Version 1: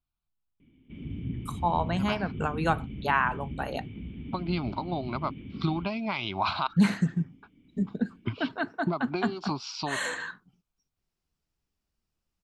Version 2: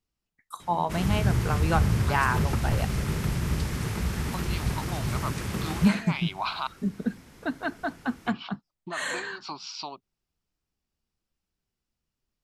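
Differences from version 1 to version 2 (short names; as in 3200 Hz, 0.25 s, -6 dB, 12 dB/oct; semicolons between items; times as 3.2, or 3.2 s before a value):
first voice: entry -0.95 s; second voice: add HPF 910 Hz 6 dB/oct; background: remove vocal tract filter i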